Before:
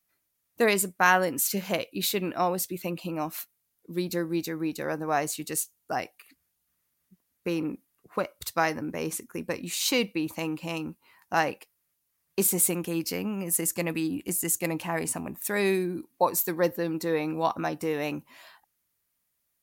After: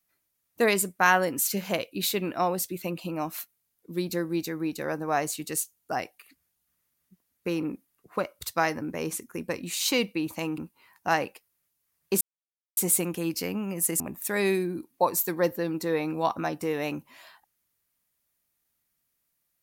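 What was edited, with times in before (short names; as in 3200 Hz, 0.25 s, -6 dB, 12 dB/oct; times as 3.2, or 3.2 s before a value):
10.58–10.84 cut
12.47 insert silence 0.56 s
13.7–15.2 cut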